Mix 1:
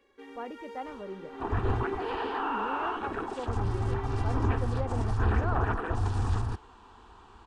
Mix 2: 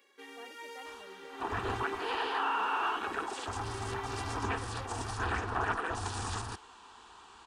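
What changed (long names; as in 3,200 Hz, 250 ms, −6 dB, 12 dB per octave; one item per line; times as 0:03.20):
speech −11.5 dB
master: add spectral tilt +3.5 dB per octave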